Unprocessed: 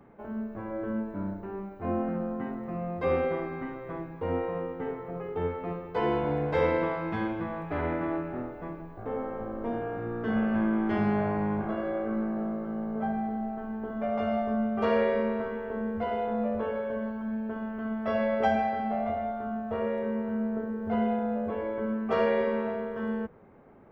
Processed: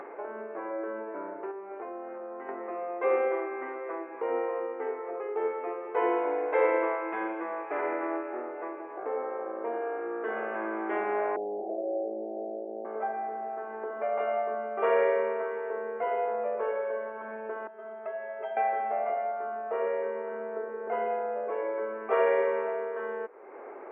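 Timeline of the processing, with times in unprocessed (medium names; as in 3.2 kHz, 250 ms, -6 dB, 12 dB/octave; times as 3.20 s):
1.51–2.49 s: compression, threshold -41 dBFS
11.36–12.85 s: steep low-pass 770 Hz 72 dB/octave
17.67–18.57 s: inharmonic resonator 190 Hz, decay 0.24 s, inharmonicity 0.03
whole clip: elliptic band-pass 370–2400 Hz, stop band 40 dB; upward compressor, threshold -33 dBFS; trim +2 dB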